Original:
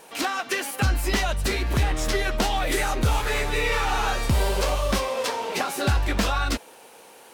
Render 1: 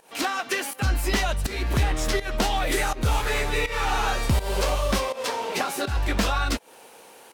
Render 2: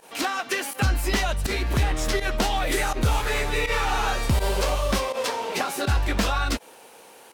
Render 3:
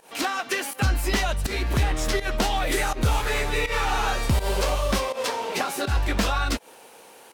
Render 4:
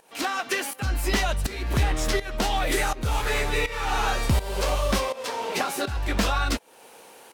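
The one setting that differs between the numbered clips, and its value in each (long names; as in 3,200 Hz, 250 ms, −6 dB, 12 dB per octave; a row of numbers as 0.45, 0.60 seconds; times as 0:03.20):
fake sidechain pumping, release: 239, 65, 134, 437 milliseconds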